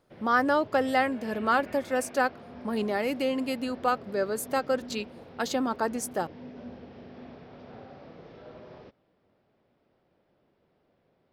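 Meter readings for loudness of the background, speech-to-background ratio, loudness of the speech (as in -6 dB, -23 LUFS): -46.0 LUFS, 17.5 dB, -28.5 LUFS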